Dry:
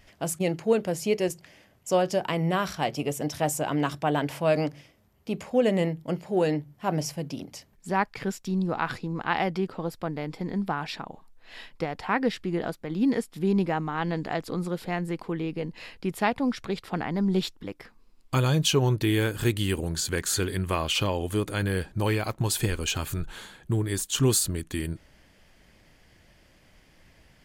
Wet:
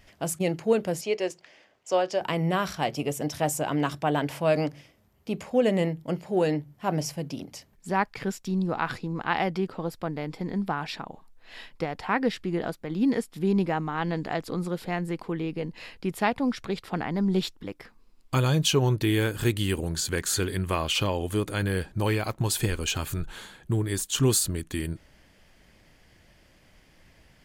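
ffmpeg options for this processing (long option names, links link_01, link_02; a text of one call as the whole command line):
ffmpeg -i in.wav -filter_complex "[0:a]asettb=1/sr,asplit=3[link_01][link_02][link_03];[link_01]atrim=end=1.014[link_04];[link_02]atrim=start=1.01:end=2.21,asetpts=PTS-STARTPTS,afade=type=in:duration=0.004:curve=qsin,afade=type=out:start_time=1.196:duration=0.004:curve=qsin,acrossover=split=310 7200:gain=0.141 1 0.1[link_05][link_06][link_07];[link_05][link_06][link_07]amix=inputs=3:normalize=0[link_08];[link_03]atrim=start=2.206[link_09];[link_04][link_08]acrossfade=duration=0.004:curve1=hsin:curve2=qsin[link_10];[link_10][link_09]acrossfade=duration=0.004:curve1=qsin:curve2=hsin" out.wav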